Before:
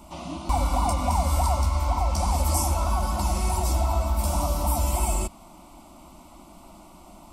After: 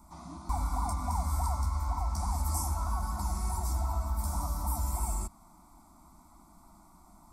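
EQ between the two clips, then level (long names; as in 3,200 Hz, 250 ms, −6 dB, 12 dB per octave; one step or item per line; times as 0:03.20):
phaser with its sweep stopped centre 1,200 Hz, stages 4
−7.0 dB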